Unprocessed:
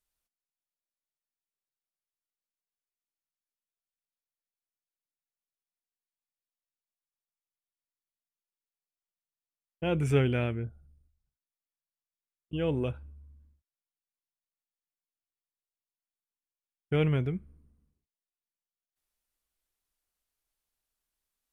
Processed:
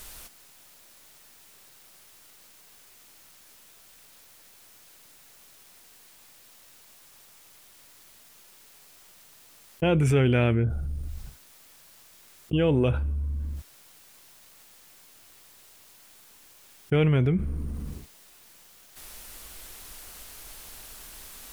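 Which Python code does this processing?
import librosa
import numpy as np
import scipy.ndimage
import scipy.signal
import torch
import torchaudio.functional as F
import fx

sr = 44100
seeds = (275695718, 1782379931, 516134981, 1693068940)

y = fx.env_flatten(x, sr, amount_pct=70)
y = y * 10.0 ** (1.5 / 20.0)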